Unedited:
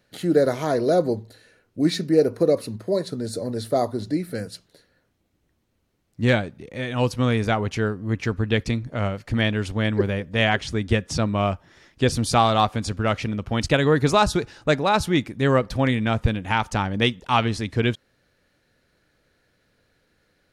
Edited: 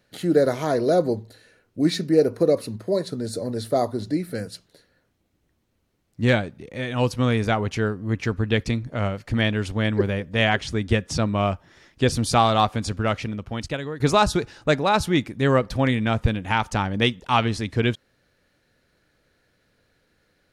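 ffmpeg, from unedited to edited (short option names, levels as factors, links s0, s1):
-filter_complex "[0:a]asplit=2[s0][s1];[s0]atrim=end=14,asetpts=PTS-STARTPTS,afade=t=out:st=12.98:d=1.02:silence=0.133352[s2];[s1]atrim=start=14,asetpts=PTS-STARTPTS,afade=t=in:d=0.004:c=hsin:silence=0.133352[s3];[s2][s3]concat=n=2:v=0:a=1"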